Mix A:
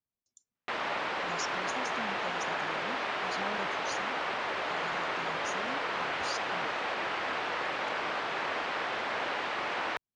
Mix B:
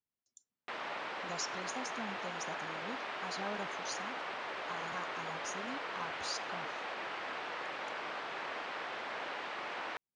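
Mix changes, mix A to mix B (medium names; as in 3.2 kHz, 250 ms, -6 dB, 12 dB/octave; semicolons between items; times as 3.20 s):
background -7.5 dB; master: add bass shelf 98 Hz -9 dB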